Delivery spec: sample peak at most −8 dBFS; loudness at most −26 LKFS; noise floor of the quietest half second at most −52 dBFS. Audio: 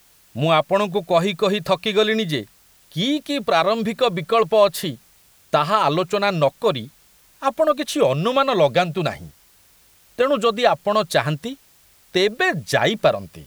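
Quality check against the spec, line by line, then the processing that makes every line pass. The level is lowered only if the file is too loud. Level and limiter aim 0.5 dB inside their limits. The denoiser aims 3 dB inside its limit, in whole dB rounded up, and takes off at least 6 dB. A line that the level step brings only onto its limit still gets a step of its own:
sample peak −3.0 dBFS: out of spec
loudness −20.0 LKFS: out of spec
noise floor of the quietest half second −54 dBFS: in spec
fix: level −6.5 dB

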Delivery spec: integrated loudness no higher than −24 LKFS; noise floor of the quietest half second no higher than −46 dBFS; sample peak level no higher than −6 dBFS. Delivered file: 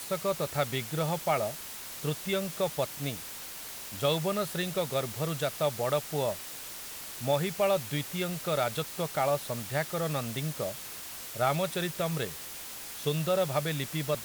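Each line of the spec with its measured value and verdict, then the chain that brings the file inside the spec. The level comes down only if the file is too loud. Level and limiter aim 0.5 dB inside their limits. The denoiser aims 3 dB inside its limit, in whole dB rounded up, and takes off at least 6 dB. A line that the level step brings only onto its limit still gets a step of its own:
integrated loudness −31.5 LKFS: in spec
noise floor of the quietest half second −42 dBFS: out of spec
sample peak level −14.0 dBFS: in spec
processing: broadband denoise 7 dB, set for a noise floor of −42 dBFS

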